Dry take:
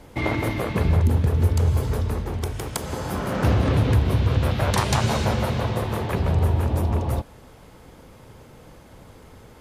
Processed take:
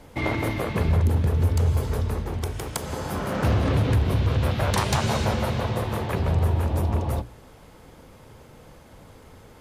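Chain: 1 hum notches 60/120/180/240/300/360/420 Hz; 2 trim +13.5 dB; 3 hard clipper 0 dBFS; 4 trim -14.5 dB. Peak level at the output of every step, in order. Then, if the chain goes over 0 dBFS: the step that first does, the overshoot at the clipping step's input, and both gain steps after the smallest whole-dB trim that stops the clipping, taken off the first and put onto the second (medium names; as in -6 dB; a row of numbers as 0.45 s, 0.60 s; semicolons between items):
-8.0 dBFS, +5.5 dBFS, 0.0 dBFS, -14.5 dBFS; step 2, 5.5 dB; step 2 +7.5 dB, step 4 -8.5 dB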